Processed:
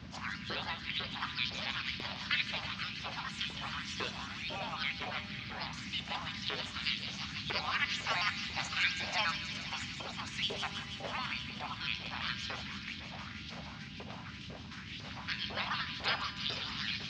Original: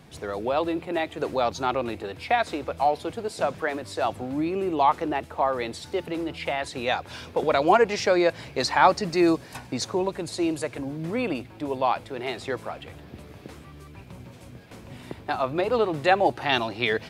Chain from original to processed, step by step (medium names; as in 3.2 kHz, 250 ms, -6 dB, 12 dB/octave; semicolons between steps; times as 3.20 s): pitch shift switched off and on +3.5 st, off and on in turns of 69 ms; steep low-pass 5.7 kHz 36 dB/octave; peaking EQ 92 Hz +8.5 dB 0.59 oct; in parallel at +2.5 dB: compression, threshold -30 dBFS, peak gain reduction 17 dB; on the sum: spectral gate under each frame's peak -20 dB weak; short-mantissa float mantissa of 6-bit; LFO high-pass saw up 2 Hz 380–3700 Hz; band noise 61–250 Hz -45 dBFS; feedback comb 200 Hz, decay 1.6 s, mix 70%; feedback echo behind a high-pass 161 ms, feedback 80%, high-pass 2.4 kHz, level -7 dB; trim +6.5 dB